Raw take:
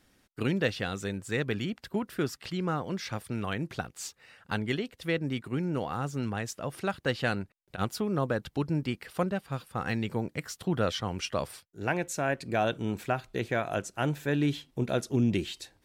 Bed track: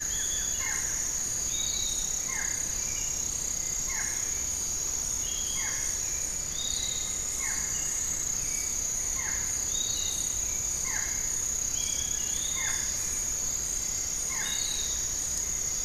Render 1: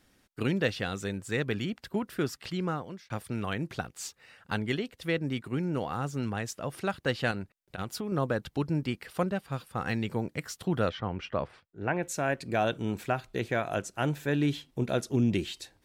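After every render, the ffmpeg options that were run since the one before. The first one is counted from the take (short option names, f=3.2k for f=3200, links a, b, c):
-filter_complex "[0:a]asettb=1/sr,asplit=3[a][b][c];[a]atrim=end=7.314[d];[b]atrim=start=7.31:end=8.12,asetpts=PTS-STARTPTS,afade=t=in:d=0.004:c=qsin,afade=t=out:st=0.806:d=0.004:c=qsin,acompressor=threshold=-30dB:ratio=5:attack=3.2:release=140:knee=1:detection=peak[e];[c]atrim=start=8.116[f];[d][e]acrossfade=d=0.004:c1=hsin:c2=qsin[g];[g][f]acrossfade=d=0.004:c1=qsin:c2=hsin,asettb=1/sr,asplit=3[h][i][j];[h]atrim=end=10.894[k];[i]atrim=start=10.89:end=12.03,asetpts=PTS-STARTPTS,afade=t=in:d=0.004:c=qsin,afade=t=out:st=1.136:d=0.004:c=qsin,lowpass=2.2k[l];[j]atrim=start=12.026[m];[k][l]acrossfade=d=0.004:c1=hsin:c2=qsin[n];[n][m]acrossfade=d=0.004:c1=qsin:c2=hsin,asplit=2[o][p];[o]atrim=end=3.1,asetpts=PTS-STARTPTS,afade=t=out:st=2.64:d=0.46[q];[p]atrim=start=3.1,asetpts=PTS-STARTPTS,afade=t=in:d=0.004:c=hsin[r];[q][r]concat=n=2:v=0:a=1"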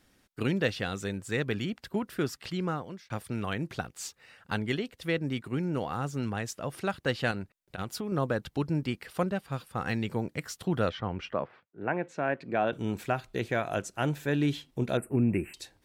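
-filter_complex "[0:a]asettb=1/sr,asplit=3[a][b][c];[a]atrim=end=11.334[d];[b]atrim=start=11.33:end=12.73,asetpts=PTS-STARTPTS,afade=t=in:d=0.004:c=qsin,afade=t=out:st=1.396:d=0.004:c=qsin,highpass=160,lowpass=2.4k[e];[c]atrim=start=12.726[f];[d][e]acrossfade=d=0.004:c1=hsin:c2=qsin[g];[g][f]acrossfade=d=0.004:c1=qsin:c2=hsin,asettb=1/sr,asplit=3[h][i][j];[h]atrim=end=14.974[k];[i]atrim=start=14.97:end=15.54,asetpts=PTS-STARTPTS,afade=t=in:d=0.004:c=qsin,afade=t=out:st=0.566:d=0.004:c=qsin,asuperstop=centerf=4700:order=20:qfactor=0.89[l];[j]atrim=start=15.536[m];[k][l]acrossfade=d=0.004:c1=hsin:c2=qsin[n];[n][m]acrossfade=d=0.004:c1=qsin:c2=hsin"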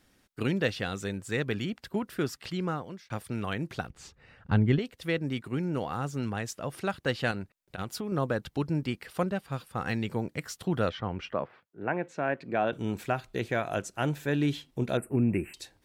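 -filter_complex "[0:a]asettb=1/sr,asplit=3[a][b][c];[a]atrim=end=3.904[d];[b]atrim=start=3.9:end=4.79,asetpts=PTS-STARTPTS,afade=t=in:d=0.004:c=qsin,afade=t=out:st=0.886:d=0.004:c=qsin,aemphasis=mode=reproduction:type=riaa[e];[c]atrim=start=4.786[f];[d][e]acrossfade=d=0.004:c1=hsin:c2=qsin[g];[g][f]acrossfade=d=0.004:c1=qsin:c2=hsin"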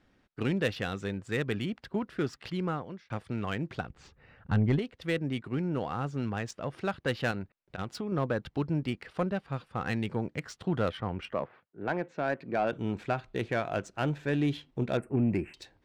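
-af "adynamicsmooth=sensitivity=6.5:basefreq=3.4k,asoftclip=type=tanh:threshold=-17.5dB"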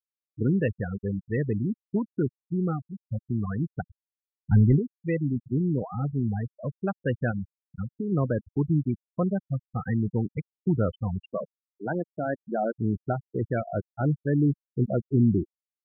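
-af "afftfilt=real='re*gte(hypot(re,im),0.0794)':imag='im*gte(hypot(re,im),0.0794)':win_size=1024:overlap=0.75,lowshelf=f=320:g=9"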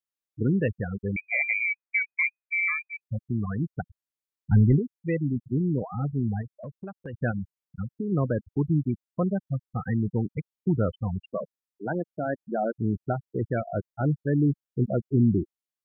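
-filter_complex "[0:a]asettb=1/sr,asplit=3[a][b][c];[a]atrim=end=1.164[d];[b]atrim=start=1.16:end=3.01,asetpts=PTS-STARTPTS,afade=t=in:d=0.004:c=qsin,afade=t=out:st=1.846:d=0.004:c=qsin,lowpass=f=2.1k:t=q:w=0.5098,lowpass=f=2.1k:t=q:w=0.6013,lowpass=f=2.1k:t=q:w=0.9,lowpass=f=2.1k:t=q:w=2.563,afreqshift=-2500[e];[c]atrim=start=3.006[f];[d][e]acrossfade=d=0.004:c1=hsin:c2=qsin[g];[g][f]acrossfade=d=0.004:c1=qsin:c2=hsin,asplit=3[h][i][j];[h]afade=t=out:st=6.41:d=0.02[k];[i]acompressor=threshold=-34dB:ratio=6:attack=3.2:release=140:knee=1:detection=peak,afade=t=in:st=6.41:d=0.02,afade=t=out:st=7.13:d=0.02[l];[j]afade=t=in:st=7.13:d=0.02[m];[k][l][m]amix=inputs=3:normalize=0"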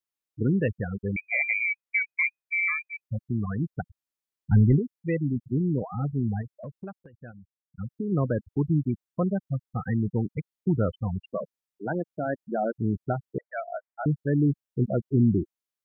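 -filter_complex "[0:a]asettb=1/sr,asplit=3[a][b][c];[a]atrim=end=13.384[d];[b]atrim=start=13.38:end=14.06,asetpts=PTS-STARTPTS,afade=t=in:d=0.004:c=qsin,afade=t=out:st=0.676:d=0.004:c=qsin,asuperpass=centerf=1200:order=20:qfactor=0.68[e];[c]atrim=start=14.056[f];[d][e]acrossfade=d=0.004:c1=hsin:c2=qsin[g];[g][f]acrossfade=d=0.004:c1=qsin:c2=hsin,asplit=3[h][i][j];[h]atrim=end=7.09,asetpts=PTS-STARTPTS,afade=t=out:st=6.95:d=0.14:silence=0.141254[k];[i]atrim=start=7.09:end=7.72,asetpts=PTS-STARTPTS,volume=-17dB[l];[j]atrim=start=7.72,asetpts=PTS-STARTPTS,afade=t=in:d=0.14:silence=0.141254[m];[k][l][m]concat=n=3:v=0:a=1"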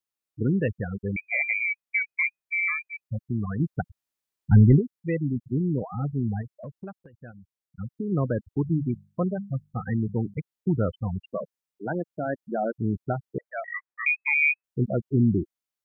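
-filter_complex "[0:a]asettb=1/sr,asplit=3[a][b][c];[a]atrim=end=8.614[d];[b]atrim=start=8.61:end=10.34,asetpts=PTS-STARTPTS,afade=t=in:d=0.004:c=qsin,afade=t=out:st=1.726:d=0.004:c=qsin,bandreject=f=50:t=h:w=6,bandreject=f=100:t=h:w=6,bandreject=f=150:t=h:w=6,bandreject=f=200:t=h:w=6[e];[c]atrim=start=10.336[f];[d][e]acrossfade=d=0.004:c1=hsin:c2=qsin[g];[g][f]acrossfade=d=0.004:c1=qsin:c2=hsin,asettb=1/sr,asplit=3[h][i][j];[h]atrim=end=13.644[k];[i]atrim=start=13.64:end=14.64,asetpts=PTS-STARTPTS,afade=t=in:d=0.004:c=qsin,afade=t=out:st=0.996:d=0.004:c=qsin,lowpass=f=2.2k:t=q:w=0.5098,lowpass=f=2.2k:t=q:w=0.6013,lowpass=f=2.2k:t=q:w=0.9,lowpass=f=2.2k:t=q:w=2.563,afreqshift=-2600[l];[j]atrim=start=14.636[m];[k][l]acrossfade=d=0.004:c1=hsin:c2=qsin[n];[n][m]acrossfade=d=0.004:c1=qsin:c2=hsin,asplit=3[o][p][q];[o]atrim=end=3.602[r];[p]atrim=start=3.598:end=4.812,asetpts=PTS-STARTPTS,volume=3.5dB[s];[q]atrim=start=4.808[t];[r][s]acrossfade=d=0.004:c1=hsin:c2=hsin[u];[u][t]acrossfade=d=0.004:c1=hsin:c2=hsin"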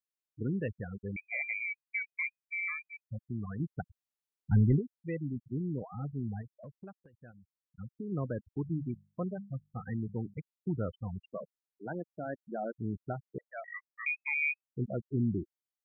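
-af "volume=-9.5dB"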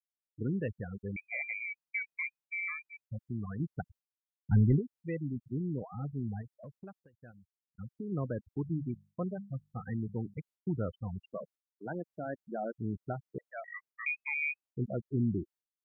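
-af "agate=range=-33dB:threshold=-55dB:ratio=3:detection=peak,adynamicequalizer=threshold=0.00316:dfrequency=1600:dqfactor=0.7:tfrequency=1600:tqfactor=0.7:attack=5:release=100:ratio=0.375:range=2.5:mode=cutabove:tftype=highshelf"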